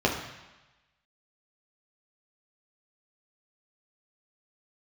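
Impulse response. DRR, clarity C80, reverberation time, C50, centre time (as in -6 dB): -2.0 dB, 8.5 dB, 1.1 s, 6.0 dB, 33 ms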